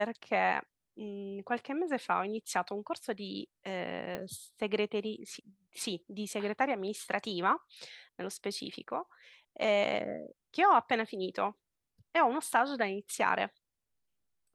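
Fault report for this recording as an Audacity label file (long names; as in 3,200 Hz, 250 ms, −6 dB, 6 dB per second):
4.150000	4.150000	click −22 dBFS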